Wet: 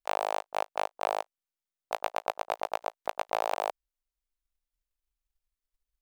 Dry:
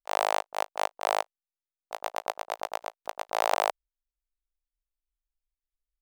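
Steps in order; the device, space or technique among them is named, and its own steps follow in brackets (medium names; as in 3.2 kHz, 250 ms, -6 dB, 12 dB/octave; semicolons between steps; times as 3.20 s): drum-bus smash (transient shaper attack +8 dB, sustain 0 dB; compression, threshold -23 dBFS, peak gain reduction 11 dB; saturation -15 dBFS, distortion -17 dB)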